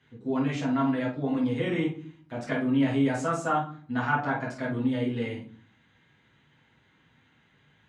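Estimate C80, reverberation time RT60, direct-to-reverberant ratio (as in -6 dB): 13.0 dB, 0.50 s, -6.5 dB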